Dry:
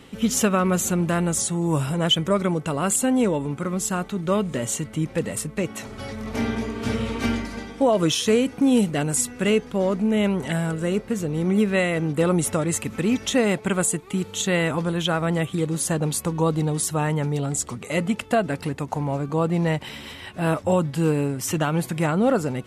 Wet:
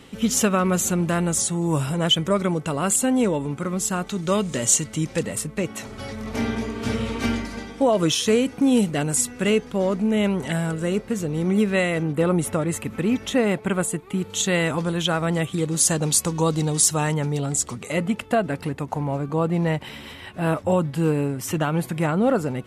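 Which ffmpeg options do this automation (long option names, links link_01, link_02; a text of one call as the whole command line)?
ffmpeg -i in.wav -af "asetnsamples=nb_out_samples=441:pad=0,asendcmd='4.07 equalizer g 11;5.23 equalizer g 1.5;12.03 equalizer g -6.5;14.3 equalizer g 3.5;15.77 equalizer g 10.5;17.14 equalizer g 3.5;17.92 equalizer g -4',equalizer=frequency=6300:width_type=o:width=1.7:gain=2" out.wav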